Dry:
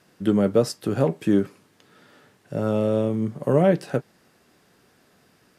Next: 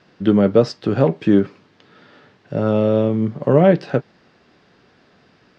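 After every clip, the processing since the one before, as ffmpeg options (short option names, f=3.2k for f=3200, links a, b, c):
-af "lowpass=f=4.9k:w=0.5412,lowpass=f=4.9k:w=1.3066,volume=5.5dB"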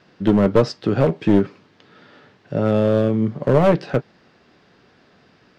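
-af "aeval=exprs='clip(val(0),-1,0.211)':c=same"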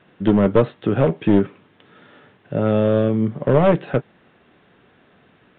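-af "aresample=8000,aresample=44100"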